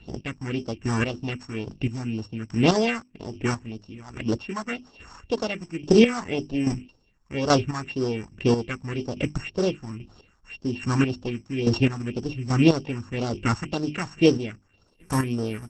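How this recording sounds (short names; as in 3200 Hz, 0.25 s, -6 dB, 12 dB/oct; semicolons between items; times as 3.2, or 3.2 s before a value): a buzz of ramps at a fixed pitch in blocks of 16 samples; phasing stages 4, 1.9 Hz, lowest notch 450–2400 Hz; chopped level 1.2 Hz, depth 65%, duty 25%; Opus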